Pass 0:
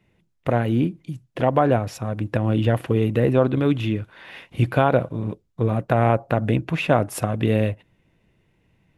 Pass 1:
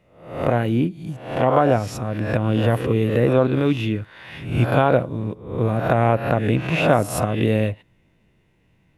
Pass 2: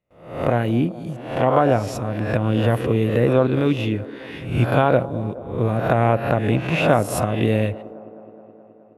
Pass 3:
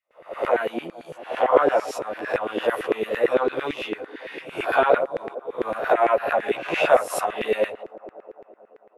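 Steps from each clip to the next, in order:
reverse spectral sustain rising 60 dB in 0.58 s
gate with hold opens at -48 dBFS; feedback echo behind a band-pass 211 ms, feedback 72%, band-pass 470 Hz, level -16 dB
chorus voices 4, 0.77 Hz, delay 13 ms, depth 1.4 ms; LFO high-pass saw down 8.9 Hz 360–2000 Hz

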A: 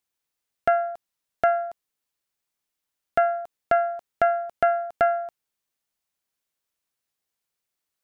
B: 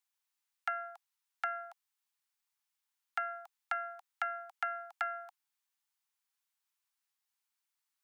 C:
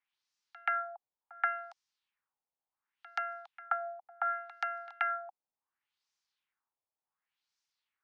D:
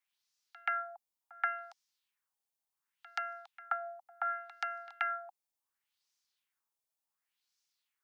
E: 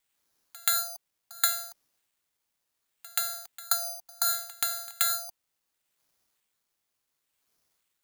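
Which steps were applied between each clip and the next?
steep high-pass 770 Hz 96 dB/octave; compression, threshold -28 dBFS, peak gain reduction 6 dB; trim -3.5 dB
pre-echo 129 ms -20 dB; LFO low-pass sine 0.69 Hz 620–5700 Hz
treble shelf 3.6 kHz +10.5 dB; trim -3.5 dB
careless resampling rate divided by 8×, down none, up zero stuff; trim -1 dB

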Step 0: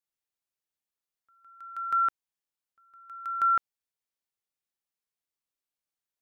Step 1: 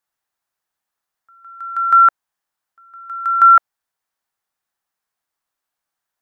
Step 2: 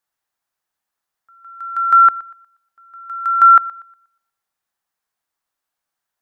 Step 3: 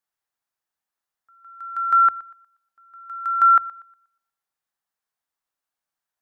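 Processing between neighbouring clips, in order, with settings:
high-order bell 1.1 kHz +8 dB; trim +7.5 dB
thinning echo 120 ms, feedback 32%, high-pass 570 Hz, level -19 dB
hum notches 50/100 Hz; trim -6 dB

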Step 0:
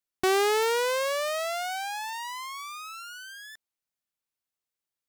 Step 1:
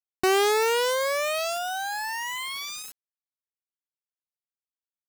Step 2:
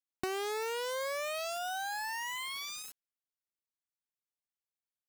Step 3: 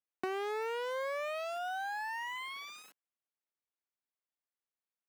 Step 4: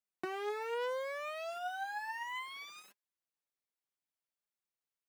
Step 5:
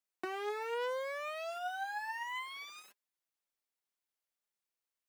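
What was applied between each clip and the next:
word length cut 6-bit, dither none; trim +2 dB
compression 10:1, threshold -27 dBFS, peak gain reduction 9 dB; trim -6 dB
three-band isolator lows -21 dB, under 190 Hz, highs -14 dB, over 2.9 kHz
flange 0.67 Hz, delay 4.6 ms, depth 4 ms, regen +40%; trim +1.5 dB
peaking EQ 110 Hz -14 dB 1.4 oct; trim +1 dB

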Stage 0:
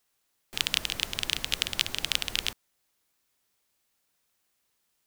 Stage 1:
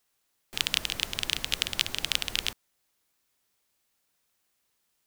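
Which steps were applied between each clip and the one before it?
no audible change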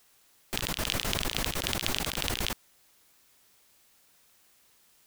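compressor with a negative ratio -38 dBFS, ratio -1; trim +6 dB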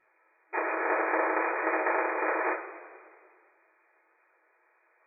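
full-wave rectifier; FFT band-pass 320–2500 Hz; two-slope reverb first 0.35 s, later 2.1 s, from -17 dB, DRR -9.5 dB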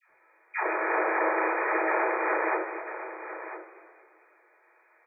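phase dispersion lows, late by 108 ms, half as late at 720 Hz; in parallel at -3 dB: compression, threshold -37 dBFS, peak gain reduction 13 dB; on the sum: delay 998 ms -12 dB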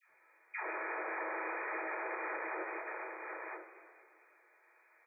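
treble shelf 2.1 kHz +10 dB; peak limiter -23 dBFS, peak gain reduction 10 dB; trim -8 dB

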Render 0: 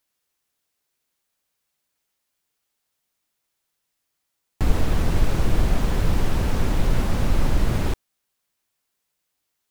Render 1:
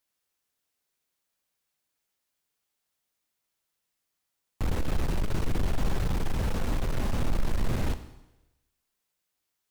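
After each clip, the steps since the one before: overload inside the chain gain 18.5 dB; Schroeder reverb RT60 0.98 s, combs from 29 ms, DRR 10.5 dB; trim -4.5 dB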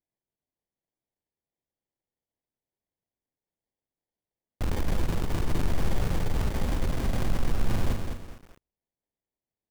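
gate -49 dBFS, range -15 dB; sample-and-hold 33×; bit-crushed delay 207 ms, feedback 35%, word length 8-bit, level -5.5 dB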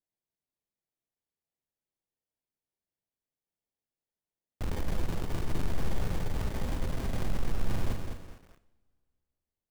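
two-slope reverb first 0.69 s, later 2.5 s, from -20 dB, DRR 12.5 dB; trim -5 dB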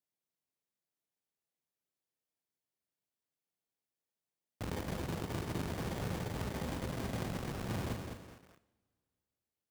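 high-pass 100 Hz 12 dB/octave; trim -1 dB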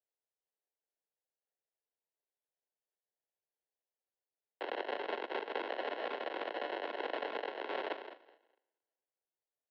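sample-and-hold 38×; Chebyshev shaper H 7 -19 dB, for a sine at -25.5 dBFS; mistuned SSB +68 Hz 340–3600 Hz; trim +6 dB

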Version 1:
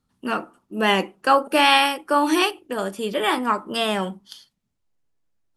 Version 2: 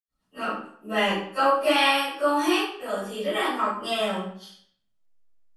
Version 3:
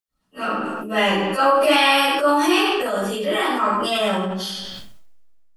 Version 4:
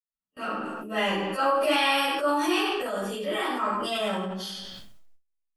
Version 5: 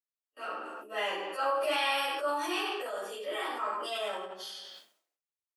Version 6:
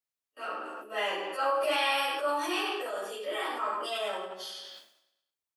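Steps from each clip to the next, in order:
reverberation RT60 0.60 s, pre-delay 79 ms; trim +1.5 dB
decay stretcher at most 22 dB/s; trim +4 dB
gate with hold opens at -36 dBFS; trim -7.5 dB
high-pass 370 Hz 24 dB/octave; trim -6 dB
feedback delay 103 ms, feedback 54%, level -18.5 dB; trim +1.5 dB

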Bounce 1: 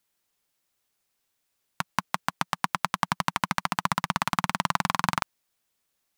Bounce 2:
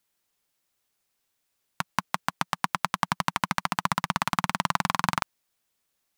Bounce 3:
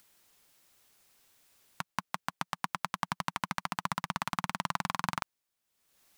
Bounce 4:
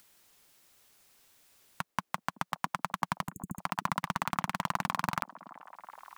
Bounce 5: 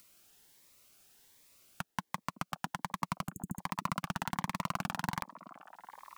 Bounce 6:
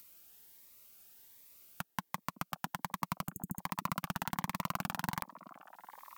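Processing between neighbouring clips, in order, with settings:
no audible change
upward compressor, threshold -42 dBFS; trim -7.5 dB
overload inside the chain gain 17.5 dB; spectral selection erased 3.28–3.59 s, 440–6500 Hz; repeats whose band climbs or falls 378 ms, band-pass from 330 Hz, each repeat 0.7 oct, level -10.5 dB; trim +2.5 dB
in parallel at -5.5 dB: saturation -26 dBFS, distortion -7 dB; on the sum: Shepard-style phaser rising 1.3 Hz; trim -3 dB
peaking EQ 15 kHz +13.5 dB 0.43 oct; trim -1.5 dB

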